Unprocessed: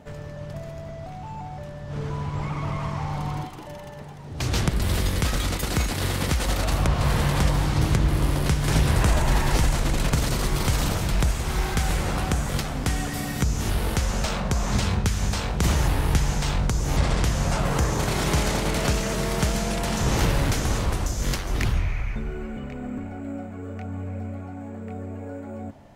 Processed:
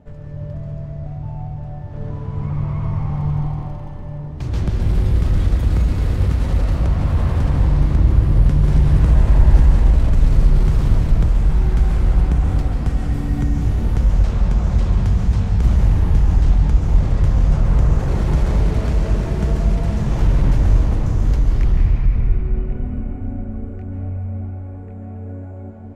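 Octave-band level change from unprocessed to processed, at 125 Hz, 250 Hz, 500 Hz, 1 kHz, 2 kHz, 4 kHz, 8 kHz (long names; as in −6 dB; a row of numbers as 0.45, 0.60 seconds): +7.5 dB, +3.5 dB, −1.0 dB, −4.0 dB, −7.0 dB, −11.0 dB, below −10 dB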